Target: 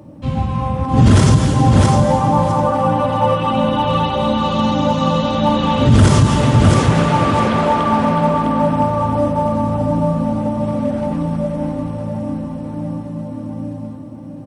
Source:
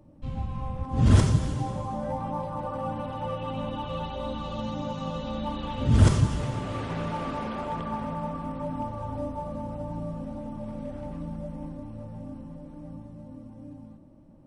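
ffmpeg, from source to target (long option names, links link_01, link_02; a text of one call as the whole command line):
ffmpeg -i in.wav -af "highpass=93,aecho=1:1:657|1314|1971:0.473|0.0852|0.0153,alimiter=level_in=17.5dB:limit=-1dB:release=50:level=0:latency=1,volume=-1dB" out.wav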